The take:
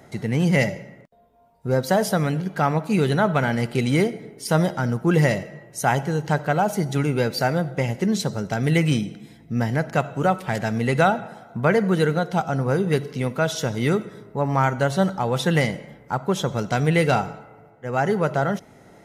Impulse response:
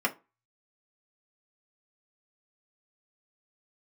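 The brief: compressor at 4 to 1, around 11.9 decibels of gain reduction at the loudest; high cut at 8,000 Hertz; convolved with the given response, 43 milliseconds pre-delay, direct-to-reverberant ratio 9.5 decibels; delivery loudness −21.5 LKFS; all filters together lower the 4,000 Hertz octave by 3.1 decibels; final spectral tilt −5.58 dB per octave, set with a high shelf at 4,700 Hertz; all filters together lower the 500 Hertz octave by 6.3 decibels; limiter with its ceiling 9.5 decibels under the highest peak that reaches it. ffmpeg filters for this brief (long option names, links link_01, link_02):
-filter_complex "[0:a]lowpass=8000,equalizer=frequency=500:width_type=o:gain=-8,equalizer=frequency=4000:width_type=o:gain=-7.5,highshelf=frequency=4700:gain=7.5,acompressor=threshold=-31dB:ratio=4,alimiter=level_in=4.5dB:limit=-24dB:level=0:latency=1,volume=-4.5dB,asplit=2[link_01][link_02];[1:a]atrim=start_sample=2205,adelay=43[link_03];[link_02][link_03]afir=irnorm=-1:irlink=0,volume=-19.5dB[link_04];[link_01][link_04]amix=inputs=2:normalize=0,volume=16dB"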